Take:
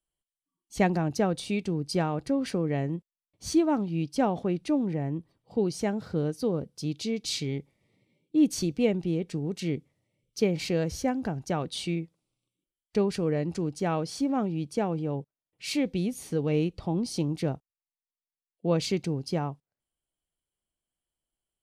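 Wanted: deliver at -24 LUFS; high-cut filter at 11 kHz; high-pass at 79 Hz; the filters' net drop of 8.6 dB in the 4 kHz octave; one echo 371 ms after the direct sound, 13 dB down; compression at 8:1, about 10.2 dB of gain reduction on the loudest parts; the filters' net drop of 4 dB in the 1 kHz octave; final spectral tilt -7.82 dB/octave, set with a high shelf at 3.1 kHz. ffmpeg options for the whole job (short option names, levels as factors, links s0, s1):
-af "highpass=79,lowpass=11000,equalizer=f=1000:t=o:g=-5,highshelf=f=3100:g=-7.5,equalizer=f=4000:t=o:g=-4.5,acompressor=threshold=0.0355:ratio=8,aecho=1:1:371:0.224,volume=3.76"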